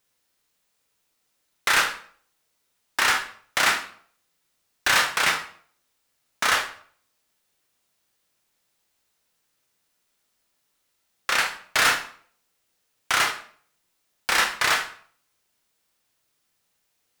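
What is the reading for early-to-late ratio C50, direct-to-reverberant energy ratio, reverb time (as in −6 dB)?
9.0 dB, 3.0 dB, 0.55 s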